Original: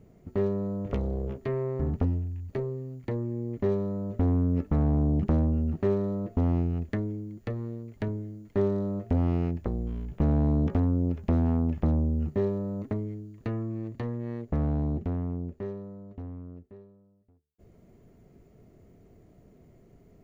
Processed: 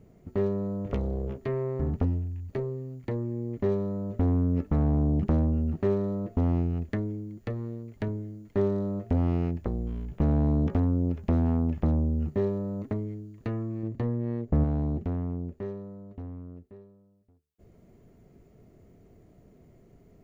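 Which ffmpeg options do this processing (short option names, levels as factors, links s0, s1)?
-filter_complex "[0:a]asettb=1/sr,asplit=3[s0][s1][s2];[s0]atrim=end=13.834[s3];[s1]atrim=start=13.83:end=14.64,asetpts=PTS-STARTPTS,afade=t=in:d=0.004:c=qsin,afade=t=out:st=0.806:d=0.004:c=qsin,tiltshelf=f=970:g=4.5[s4];[s2]atrim=start=14.636[s5];[s3][s4]acrossfade=d=0.004:c1=hsin:c2=qsin[s6];[s6][s5]acrossfade=d=0.004:c1=qsin:c2=hsin"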